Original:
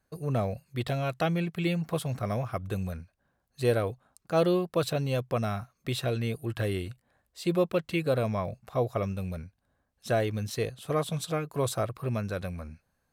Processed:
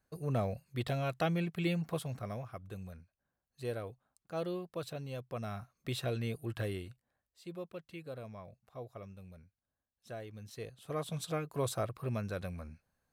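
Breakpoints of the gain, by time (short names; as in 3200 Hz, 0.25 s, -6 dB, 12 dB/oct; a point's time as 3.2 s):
1.79 s -4.5 dB
2.57 s -13 dB
5.25 s -13 dB
5.77 s -6 dB
6.58 s -6 dB
7.42 s -18 dB
10.27 s -18 dB
11.26 s -5.5 dB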